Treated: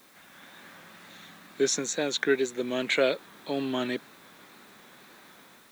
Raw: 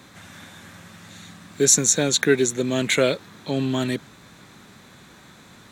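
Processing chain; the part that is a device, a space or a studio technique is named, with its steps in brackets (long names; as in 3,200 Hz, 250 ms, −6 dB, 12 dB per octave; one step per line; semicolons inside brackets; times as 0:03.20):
dictaphone (band-pass filter 290–4,100 Hz; automatic gain control gain up to 6 dB; tape wow and flutter; white noise bed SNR 29 dB)
level −8.5 dB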